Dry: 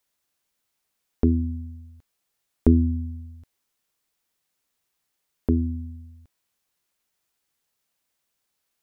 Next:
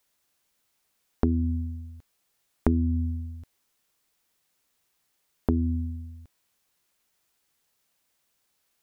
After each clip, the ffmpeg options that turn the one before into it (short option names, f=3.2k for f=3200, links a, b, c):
-af "acompressor=threshold=-25dB:ratio=4,volume=4dB"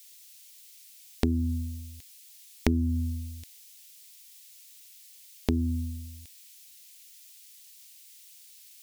-af "aexciter=amount=8:drive=7.1:freq=2k,volume=-2dB"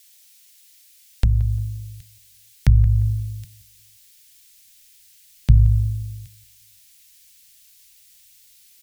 -filter_complex "[0:a]asplit=2[a][b];[b]adelay=175,lowpass=f=2k:p=1,volume=-16dB,asplit=2[c][d];[d]adelay=175,lowpass=f=2k:p=1,volume=0.33,asplit=2[e][f];[f]adelay=175,lowpass=f=2k:p=1,volume=0.33[g];[a][c][e][g]amix=inputs=4:normalize=0,afreqshift=-190,asubboost=boost=9:cutoff=120"